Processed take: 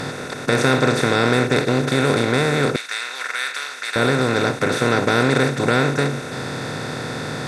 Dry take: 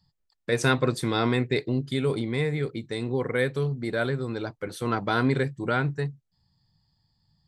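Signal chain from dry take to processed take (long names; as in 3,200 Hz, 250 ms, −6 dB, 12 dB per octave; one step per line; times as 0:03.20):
compressor on every frequency bin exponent 0.2
0:02.76–0:03.96: Chebyshev high-pass filter 1,800 Hz, order 2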